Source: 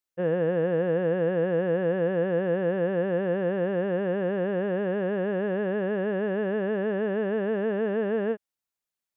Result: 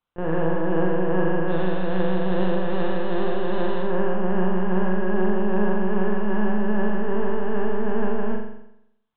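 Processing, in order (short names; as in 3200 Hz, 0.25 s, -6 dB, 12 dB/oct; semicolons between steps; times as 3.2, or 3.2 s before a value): 1.49–3.82 delta modulation 64 kbps, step -30 dBFS; graphic EQ 125/250/500/1000/2000 Hz -7/+11/-11/+11/-7 dB; limiter -23.5 dBFS, peak gain reduction 7 dB; tremolo 2.5 Hz, depth 29%; LPC vocoder at 8 kHz pitch kept; flutter echo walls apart 7.4 m, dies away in 0.78 s; gain +8.5 dB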